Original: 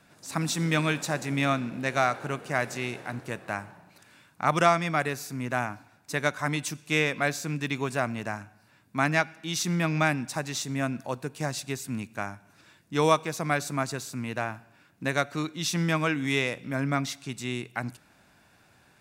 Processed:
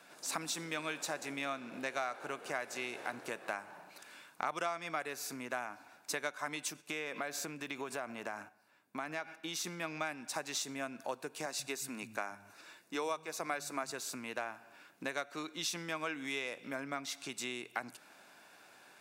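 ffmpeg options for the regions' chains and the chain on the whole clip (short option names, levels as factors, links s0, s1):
-filter_complex "[0:a]asettb=1/sr,asplit=3[s0][s1][s2];[s0]atrim=end=6.704[s3];[s1]atrim=start=6.7:end=9.67,asetpts=PTS-STARTPTS,afade=t=in:d=0.004:c=qsin,afade=t=out:st=2.966:d=0.004:c=qsin,agate=range=0.398:threshold=0.00282:ratio=16:release=100:detection=peak,acompressor=threshold=0.0282:ratio=3:attack=3.2:release=140:knee=1:detection=peak,equalizer=f=5400:w=0.43:g=-4[s4];[s2]atrim=start=9.666[s5];[s3][s4]acrossfade=d=0.004:c1=hsin:c2=qsin[s6];[s6][s5]acrossfade=d=0.004:c1=qsin:c2=hsin,asettb=1/sr,asplit=3[s7][s8][s9];[s7]atrim=end=11.464[s10];[s8]atrim=start=11.46:end=13.91,asetpts=PTS-STARTPTS,afade=t=in:d=0.004:c=qsin,afade=t=out:st=2.446:d=0.004:c=qsin,bandreject=f=3200:w=10,acrossover=split=160[s11][s12];[s11]adelay=130[s13];[s13][s12]amix=inputs=2:normalize=0,atrim=end_sample=108045[s14];[s9]atrim=start=13.906[s15];[s10][s14]acrossfade=d=0.004:c1=hsin:c2=qsin[s16];[s16][s15]acrossfade=d=0.004:c1=qsin:c2=hsin,bandreject=f=1900:w=26,acompressor=threshold=0.0158:ratio=6,highpass=370,volume=1.33"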